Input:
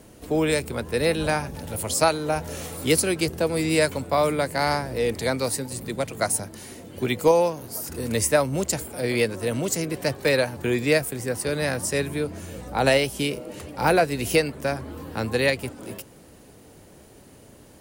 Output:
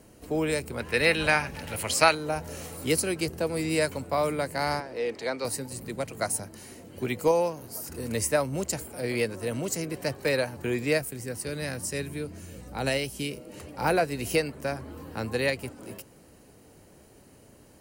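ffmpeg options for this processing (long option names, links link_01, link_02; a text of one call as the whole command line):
ffmpeg -i in.wav -filter_complex "[0:a]asettb=1/sr,asplit=3[link_01][link_02][link_03];[link_01]atrim=end=0.804[link_04];[link_02]atrim=start=0.8:end=2.15,asetpts=PTS-STARTPTS,afade=type=in:duration=0.004:curve=qsin,afade=type=out:start_time=1.346:duration=0.004:curve=qsin,equalizer=frequency=2300:width_type=o:width=2:gain=12.5[link_05];[link_03]atrim=start=2.146[link_06];[link_04][link_05]acrossfade=duration=0.004:curve1=hsin:curve2=qsin[link_07];[link_07][link_06]acrossfade=duration=0.004:curve1=qsin:curve2=hsin,asettb=1/sr,asplit=3[link_08][link_09][link_10];[link_08]atrim=end=4.804[link_11];[link_09]atrim=start=4.8:end=5.45,asetpts=PTS-STARTPTS,afade=type=in:duration=0.004:curve=qsin,afade=type=out:start_time=0.646:duration=0.004:curve=qsin,acrossover=split=250 6200:gain=0.141 1 0.126[link_12][link_13][link_14];[link_12][link_13][link_14]amix=inputs=3:normalize=0[link_15];[link_10]atrim=start=5.446[link_16];[link_11][link_15]acrossfade=duration=0.004:curve1=hsin:curve2=qsin[link_17];[link_17][link_16]acrossfade=duration=0.004:curve1=qsin:curve2=hsin,asettb=1/sr,asplit=3[link_18][link_19][link_20];[link_18]atrim=end=11.014[link_21];[link_19]atrim=start=11.01:end=13.53,asetpts=PTS-STARTPTS,afade=type=in:duration=0.004:curve=qsin,afade=type=out:start_time=2.516:duration=0.004:curve=qsin,equalizer=frequency=830:width=0.6:gain=-6[link_22];[link_20]atrim=start=13.526[link_23];[link_21][link_22]acrossfade=duration=0.004:curve1=hsin:curve2=qsin[link_24];[link_24][link_23]acrossfade=duration=0.004:curve1=qsin:curve2=hsin,bandreject=frequency=3500:width=10,volume=-5dB" out.wav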